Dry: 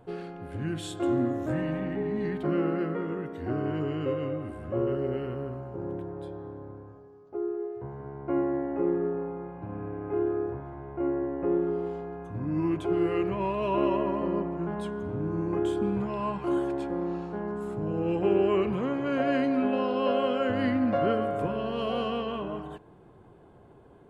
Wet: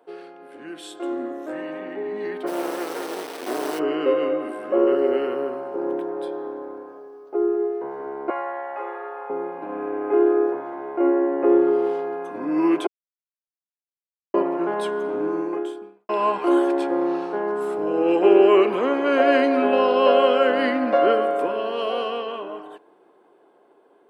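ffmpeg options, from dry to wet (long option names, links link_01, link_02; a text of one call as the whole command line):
ffmpeg -i in.wav -filter_complex "[0:a]asplit=3[link_01][link_02][link_03];[link_01]afade=type=out:start_time=2.46:duration=0.02[link_04];[link_02]acrusher=bits=4:dc=4:mix=0:aa=0.000001,afade=type=in:start_time=2.46:duration=0.02,afade=type=out:start_time=3.78:duration=0.02[link_05];[link_03]afade=type=in:start_time=3.78:duration=0.02[link_06];[link_04][link_05][link_06]amix=inputs=3:normalize=0,asettb=1/sr,asplit=3[link_07][link_08][link_09];[link_07]atrim=end=8.304[link_10];[link_08]atrim=start=8.3:end=9.3,asetpts=PTS-STARTPTS,afade=type=in:duration=0.004:curve=qsin,afade=type=out:start_time=0.996:duration=0.004:curve=qsin,highpass=frequency=700:width=0.5412,highpass=frequency=700:width=1.3066[link_11];[link_09]atrim=start=9.296[link_12];[link_10][link_11]acrossfade=duration=0.004:curve1=hsin:curve2=qsin[link_13];[link_13][link_12]acrossfade=duration=0.004:curve1=qsin:curve2=hsin,asplit=4[link_14][link_15][link_16][link_17];[link_14]atrim=end=12.87,asetpts=PTS-STARTPTS,afade=type=out:start_time=12.866:duration=0.004:curve=hsin[link_18];[link_15]atrim=start=12.87:end=14.34,asetpts=PTS-STARTPTS,volume=0[link_19];[link_16]atrim=start=14.34:end=16.09,asetpts=PTS-STARTPTS,afade=type=in:duration=0.004:curve=hsin,afade=type=out:start_time=0.93:duration=0.82:curve=qua[link_20];[link_17]atrim=start=16.09,asetpts=PTS-STARTPTS,afade=type=in:duration=0.004:curve=hsin[link_21];[link_18][link_19][link_20][link_21]concat=n=4:v=0:a=1,highpass=frequency=320:width=0.5412,highpass=frequency=320:width=1.3066,bandreject=frequency=6900:width=8.9,dynaudnorm=framelen=340:gausssize=17:maxgain=11.5dB" out.wav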